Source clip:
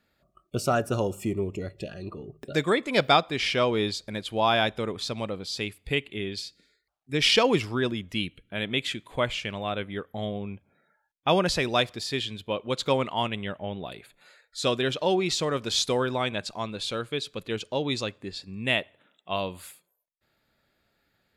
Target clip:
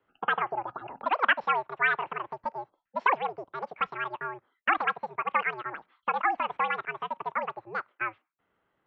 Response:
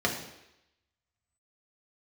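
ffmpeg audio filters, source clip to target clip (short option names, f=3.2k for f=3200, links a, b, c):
-filter_complex "[0:a]asetrate=106281,aresample=44100,acrossover=split=630[a][b];[a]acompressor=threshold=-46dB:ratio=10[c];[c][b]amix=inputs=2:normalize=0,lowshelf=f=210:g=-10.5,highpass=f=150:t=q:w=0.5412,highpass=f=150:t=q:w=1.307,lowpass=f=2.6k:t=q:w=0.5176,lowpass=f=2.6k:t=q:w=0.7071,lowpass=f=2.6k:t=q:w=1.932,afreqshift=-110,volume=1dB"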